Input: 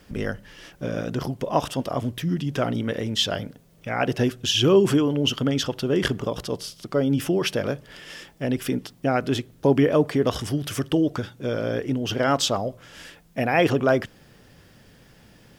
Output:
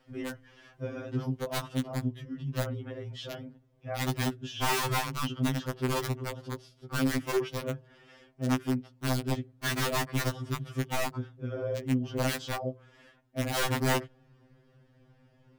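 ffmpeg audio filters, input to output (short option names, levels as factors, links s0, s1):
-af "asetnsamples=n=441:p=0,asendcmd='1.46 lowpass f 1000',lowpass=f=2200:p=1,adynamicequalizer=threshold=0.0158:dfrequency=180:dqfactor=3.6:tfrequency=180:tqfactor=3.6:attack=5:release=100:ratio=0.375:range=1.5:mode=cutabove:tftype=bell,aeval=exprs='(mod(6.31*val(0)+1,2)-1)/6.31':c=same,afftfilt=real='re*2.45*eq(mod(b,6),0)':imag='im*2.45*eq(mod(b,6),0)':win_size=2048:overlap=0.75,volume=0.531"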